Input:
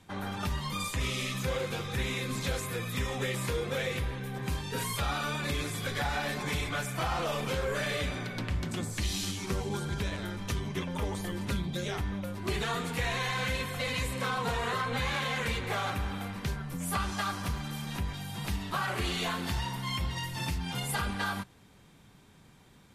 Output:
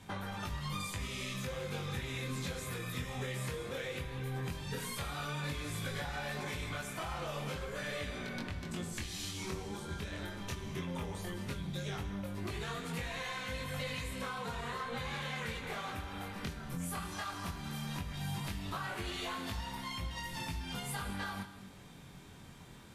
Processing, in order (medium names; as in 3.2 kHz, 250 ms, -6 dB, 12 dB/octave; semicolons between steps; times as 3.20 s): compression 10:1, threshold -41 dBFS, peak gain reduction 15 dB; chorus 0.15 Hz, delay 19 ms, depth 4.8 ms; on a send: reverberation, pre-delay 3 ms, DRR 9.5 dB; on the sum: trim +7 dB